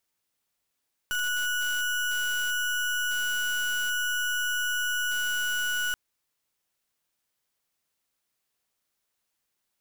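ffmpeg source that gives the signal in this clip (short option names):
-f lavfi -i "aevalsrc='0.0398*(2*lt(mod(1470*t,1),0.32)-1)':d=4.83:s=44100"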